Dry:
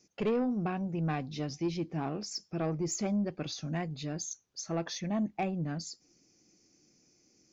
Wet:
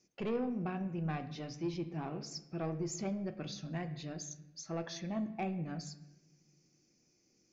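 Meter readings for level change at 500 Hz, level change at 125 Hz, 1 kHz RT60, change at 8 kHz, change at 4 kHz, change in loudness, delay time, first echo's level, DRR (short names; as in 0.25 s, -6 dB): -5.0 dB, -4.5 dB, 0.85 s, n/a, -6.0 dB, -5.0 dB, none, none, 8.0 dB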